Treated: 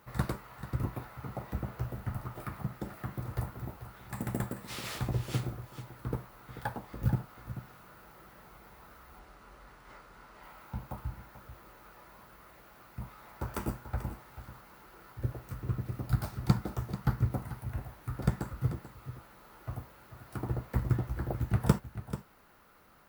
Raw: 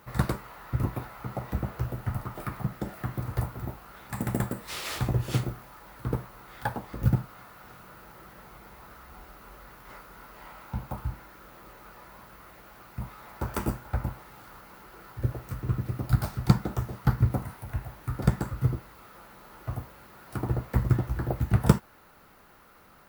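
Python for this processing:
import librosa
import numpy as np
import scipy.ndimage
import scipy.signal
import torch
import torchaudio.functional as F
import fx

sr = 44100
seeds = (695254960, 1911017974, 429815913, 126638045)

y = x + 10.0 ** (-12.5 / 20.0) * np.pad(x, (int(438 * sr / 1000.0), 0))[:len(x)]
y = fx.resample_bad(y, sr, factor=2, down='filtered', up='hold', at=(9.19, 10.43))
y = F.gain(torch.from_numpy(y), -5.5).numpy()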